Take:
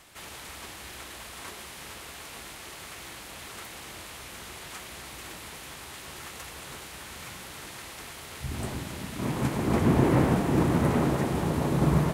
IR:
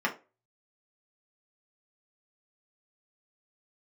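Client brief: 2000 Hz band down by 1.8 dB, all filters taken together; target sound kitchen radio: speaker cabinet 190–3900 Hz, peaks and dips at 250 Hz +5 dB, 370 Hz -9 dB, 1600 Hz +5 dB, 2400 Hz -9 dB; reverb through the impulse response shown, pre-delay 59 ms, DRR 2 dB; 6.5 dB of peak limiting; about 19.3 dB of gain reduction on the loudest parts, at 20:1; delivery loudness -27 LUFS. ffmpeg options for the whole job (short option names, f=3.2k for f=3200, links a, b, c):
-filter_complex "[0:a]equalizer=f=2k:t=o:g=-3.5,acompressor=threshold=-37dB:ratio=20,alimiter=level_in=10dB:limit=-24dB:level=0:latency=1,volume=-10dB,asplit=2[a][b];[1:a]atrim=start_sample=2205,adelay=59[c];[b][c]afir=irnorm=-1:irlink=0,volume=-12.5dB[d];[a][d]amix=inputs=2:normalize=0,highpass=190,equalizer=f=250:t=q:w=4:g=5,equalizer=f=370:t=q:w=4:g=-9,equalizer=f=1.6k:t=q:w=4:g=5,equalizer=f=2.4k:t=q:w=4:g=-9,lowpass=f=3.9k:w=0.5412,lowpass=f=3.9k:w=1.3066,volume=17.5dB"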